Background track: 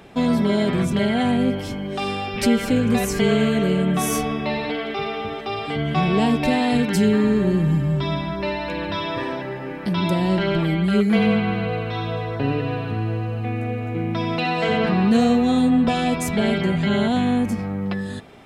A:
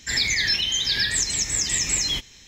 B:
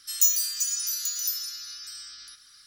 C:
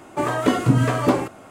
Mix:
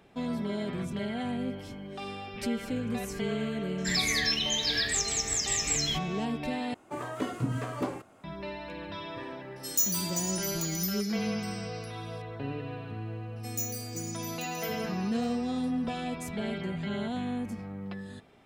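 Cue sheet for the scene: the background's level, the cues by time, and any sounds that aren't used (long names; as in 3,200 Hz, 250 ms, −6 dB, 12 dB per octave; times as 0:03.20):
background track −13.5 dB
0:03.78: mix in A −6 dB
0:06.74: overwrite with C −14 dB
0:09.56: mix in B −6 dB
0:13.36: mix in B −14 dB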